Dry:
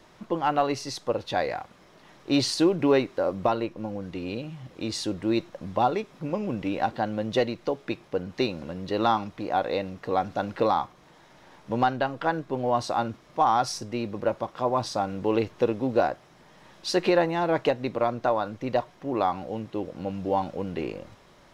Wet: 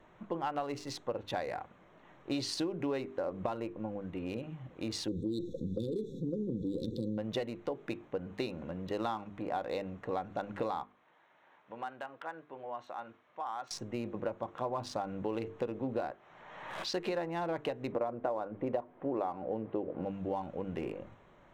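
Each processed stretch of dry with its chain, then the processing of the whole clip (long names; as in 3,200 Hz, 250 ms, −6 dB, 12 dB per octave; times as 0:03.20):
0:05.08–0:07.18: linear-phase brick-wall band-stop 540–3,400 Hz + envelope flattener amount 50%
0:10.83–0:13.71: high-pass filter 1,300 Hz 6 dB per octave + downward compressor 1.5 to 1, threshold −39 dBFS + high-frequency loss of the air 110 metres
0:16.11–0:16.94: three-way crossover with the lows and the highs turned down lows −12 dB, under 560 Hz, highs −22 dB, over 6,800 Hz + background raised ahead of every attack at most 38 dB per second
0:17.92–0:20.05: low-pass filter 2,800 Hz + parametric band 470 Hz +9.5 dB 2.3 octaves
whole clip: adaptive Wiener filter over 9 samples; mains-hum notches 50/100/150/200/250/300/350/400/450 Hz; downward compressor, threshold −27 dBFS; level −4.5 dB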